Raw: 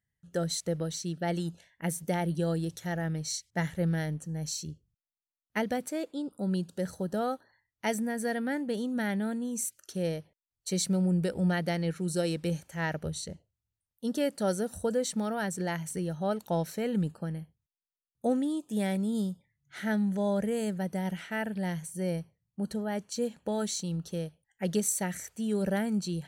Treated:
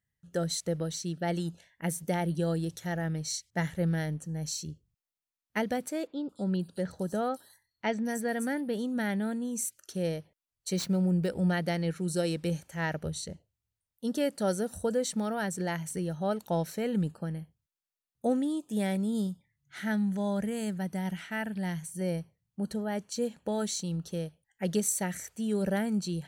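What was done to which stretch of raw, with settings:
0:06.07–0:08.79: multiband delay without the direct sound lows, highs 220 ms, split 4,900 Hz
0:10.76–0:11.28: running median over 5 samples
0:19.27–0:22.01: parametric band 500 Hz −6.5 dB

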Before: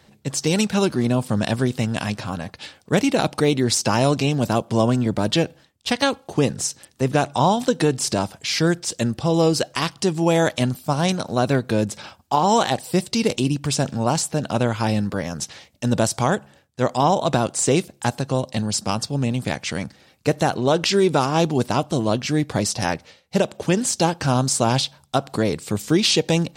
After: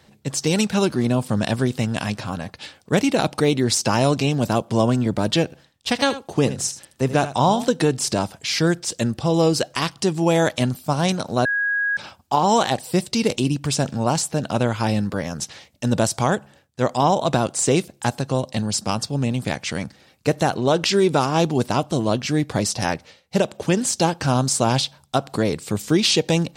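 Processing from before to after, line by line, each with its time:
0:05.44–0:07.73: single-tap delay 79 ms −13 dB
0:11.45–0:11.97: beep over 1,650 Hz −18.5 dBFS

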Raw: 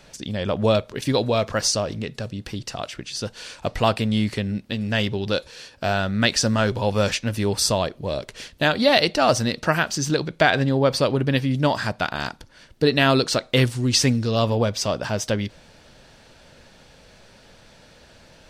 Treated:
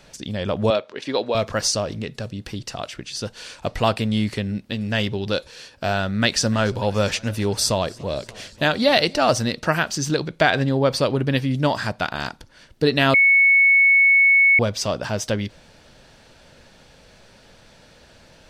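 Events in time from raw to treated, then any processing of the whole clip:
0:00.70–0:01.35: band-pass filter 330–4,400 Hz
0:06.07–0:09.18: feedback echo with a swinging delay time 289 ms, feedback 72%, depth 114 cents, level −24 dB
0:13.14–0:14.59: beep over 2,210 Hz −11 dBFS

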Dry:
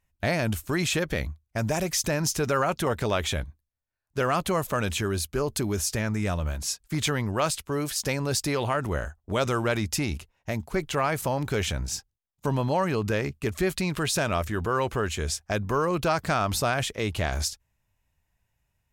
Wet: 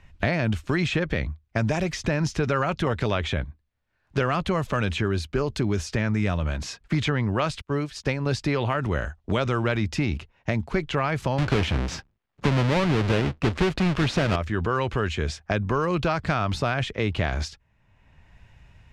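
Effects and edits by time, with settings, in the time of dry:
0:07.61–0:08.26: expander for the loud parts 2.5 to 1, over −41 dBFS
0:11.38–0:14.36: each half-wave held at its own peak
whole clip: low-pass filter 3,300 Hz 12 dB per octave; parametric band 720 Hz −4 dB 2.3 octaves; multiband upward and downward compressor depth 70%; level +3 dB

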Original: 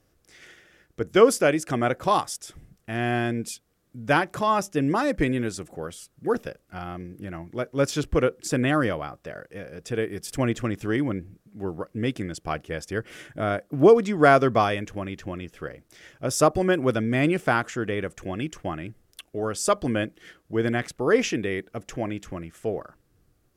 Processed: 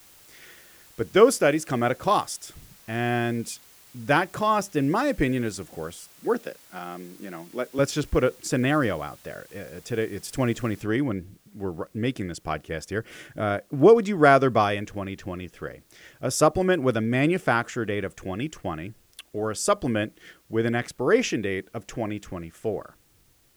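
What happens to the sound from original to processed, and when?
0:06.11–0:07.79: high-pass filter 190 Hz 24 dB per octave
0:10.82: noise floor change −53 dB −64 dB

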